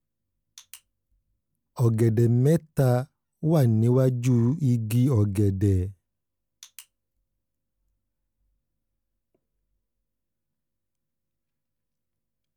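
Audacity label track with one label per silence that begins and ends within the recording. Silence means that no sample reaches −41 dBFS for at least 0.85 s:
0.760000	1.770000	silence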